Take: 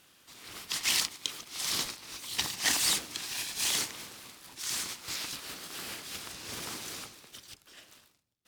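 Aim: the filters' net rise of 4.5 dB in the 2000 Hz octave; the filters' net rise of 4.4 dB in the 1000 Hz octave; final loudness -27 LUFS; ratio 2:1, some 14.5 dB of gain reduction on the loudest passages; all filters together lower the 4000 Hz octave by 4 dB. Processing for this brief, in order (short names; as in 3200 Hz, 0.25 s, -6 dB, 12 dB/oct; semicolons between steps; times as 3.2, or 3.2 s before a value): bell 1000 Hz +4 dB; bell 2000 Hz +6.5 dB; bell 4000 Hz -7.5 dB; compressor 2:1, threshold -49 dBFS; gain +17 dB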